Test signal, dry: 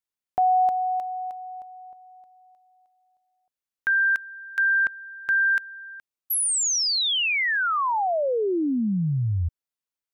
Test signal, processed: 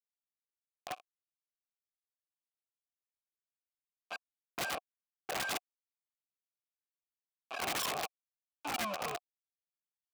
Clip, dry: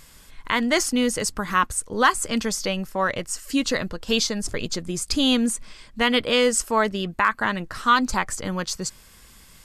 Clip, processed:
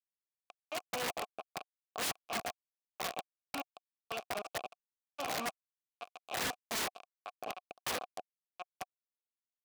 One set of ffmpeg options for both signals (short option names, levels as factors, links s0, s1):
-filter_complex "[0:a]tremolo=f=0.9:d=0.83,asplit=2[s0][s1];[s1]adelay=230,highpass=300,lowpass=3400,asoftclip=type=hard:threshold=0.141,volume=0.112[s2];[s0][s2]amix=inputs=2:normalize=0,acrossover=split=3300[s3][s4];[s3]acrusher=samples=24:mix=1:aa=0.000001:lfo=1:lforange=38.4:lforate=3.8[s5];[s4]acompressor=threshold=0.01:ratio=12:attack=33:release=281:knee=1:detection=peak[s6];[s5][s6]amix=inputs=2:normalize=0,asplit=2[s7][s8];[s8]adelay=14,volume=0.355[s9];[s7][s9]amix=inputs=2:normalize=0,acrusher=bits=3:mix=0:aa=0.000001,asplit=3[s10][s11][s12];[s10]bandpass=f=730:t=q:w=8,volume=1[s13];[s11]bandpass=f=1090:t=q:w=8,volume=0.501[s14];[s12]bandpass=f=2440:t=q:w=8,volume=0.355[s15];[s13][s14][s15]amix=inputs=3:normalize=0,aeval=exprs='(mod(29.9*val(0)+1,2)-1)/29.9':c=same,alimiter=level_in=2.99:limit=0.0631:level=0:latency=1:release=339,volume=0.335,highpass=f=120:p=1,volume=1.58"